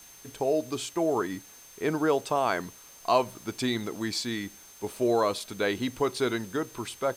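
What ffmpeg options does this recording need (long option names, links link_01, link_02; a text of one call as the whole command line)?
ffmpeg -i in.wav -af "adeclick=threshold=4,bandreject=frequency=6300:width=30,afwtdn=0.0025" out.wav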